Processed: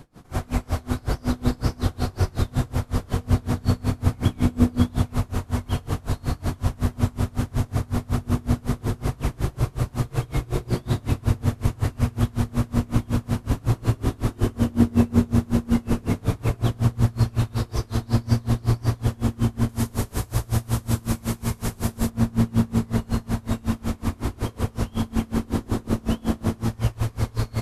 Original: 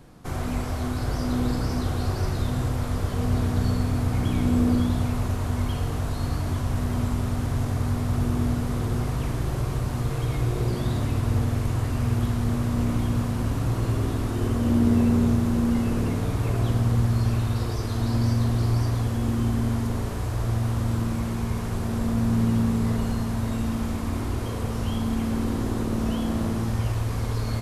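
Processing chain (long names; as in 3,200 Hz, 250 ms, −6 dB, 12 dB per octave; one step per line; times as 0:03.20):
0:19.69–0:22.10: high-shelf EQ 4,900 Hz +11 dB
tremolo with a sine in dB 5.4 Hz, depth 29 dB
level +6.5 dB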